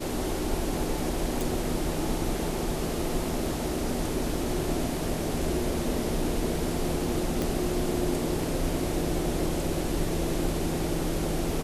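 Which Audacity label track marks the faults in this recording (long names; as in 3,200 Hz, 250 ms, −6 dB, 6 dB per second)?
1.410000	1.410000	click
7.420000	7.420000	click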